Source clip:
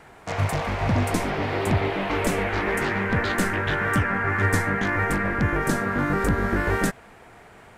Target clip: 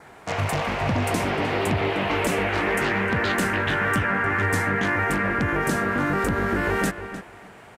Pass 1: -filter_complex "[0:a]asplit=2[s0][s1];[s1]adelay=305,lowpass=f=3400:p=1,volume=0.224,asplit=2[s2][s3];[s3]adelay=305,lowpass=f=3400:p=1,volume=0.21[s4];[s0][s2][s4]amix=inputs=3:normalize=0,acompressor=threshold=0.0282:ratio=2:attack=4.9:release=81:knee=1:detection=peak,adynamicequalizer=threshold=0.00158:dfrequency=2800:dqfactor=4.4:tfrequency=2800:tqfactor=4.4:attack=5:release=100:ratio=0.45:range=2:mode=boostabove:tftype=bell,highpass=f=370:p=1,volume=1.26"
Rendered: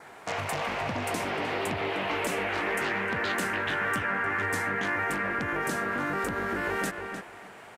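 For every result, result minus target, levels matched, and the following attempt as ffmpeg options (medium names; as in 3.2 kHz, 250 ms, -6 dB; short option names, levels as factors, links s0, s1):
125 Hz band -6.5 dB; compression: peak gain reduction +4.5 dB
-filter_complex "[0:a]asplit=2[s0][s1];[s1]adelay=305,lowpass=f=3400:p=1,volume=0.224,asplit=2[s2][s3];[s3]adelay=305,lowpass=f=3400:p=1,volume=0.21[s4];[s0][s2][s4]amix=inputs=3:normalize=0,acompressor=threshold=0.0282:ratio=2:attack=4.9:release=81:knee=1:detection=peak,adynamicequalizer=threshold=0.00158:dfrequency=2800:dqfactor=4.4:tfrequency=2800:tqfactor=4.4:attack=5:release=100:ratio=0.45:range=2:mode=boostabove:tftype=bell,highpass=f=95:p=1,volume=1.26"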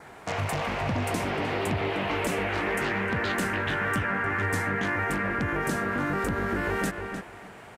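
compression: peak gain reduction +4.5 dB
-filter_complex "[0:a]asplit=2[s0][s1];[s1]adelay=305,lowpass=f=3400:p=1,volume=0.224,asplit=2[s2][s3];[s3]adelay=305,lowpass=f=3400:p=1,volume=0.21[s4];[s0][s2][s4]amix=inputs=3:normalize=0,acompressor=threshold=0.0841:ratio=2:attack=4.9:release=81:knee=1:detection=peak,adynamicequalizer=threshold=0.00158:dfrequency=2800:dqfactor=4.4:tfrequency=2800:tqfactor=4.4:attack=5:release=100:ratio=0.45:range=2:mode=boostabove:tftype=bell,highpass=f=95:p=1,volume=1.26"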